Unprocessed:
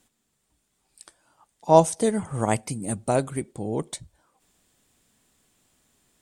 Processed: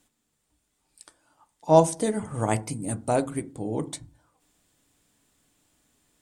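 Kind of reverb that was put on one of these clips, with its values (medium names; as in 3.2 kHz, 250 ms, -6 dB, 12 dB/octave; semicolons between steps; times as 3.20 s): FDN reverb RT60 0.35 s, low-frequency decay 1.6×, high-frequency decay 0.3×, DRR 10 dB; trim -2 dB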